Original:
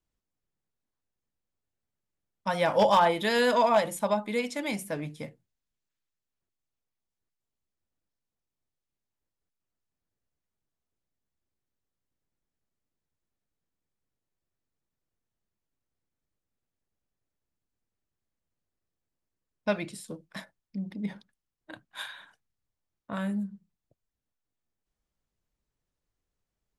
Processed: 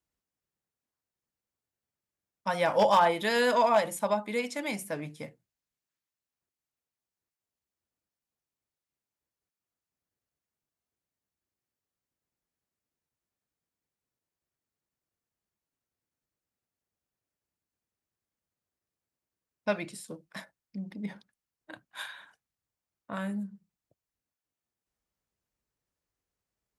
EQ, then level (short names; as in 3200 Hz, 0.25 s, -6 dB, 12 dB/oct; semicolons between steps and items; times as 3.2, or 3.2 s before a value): HPF 48 Hz; low shelf 340 Hz -4.5 dB; bell 3500 Hz -3 dB 0.51 oct; 0.0 dB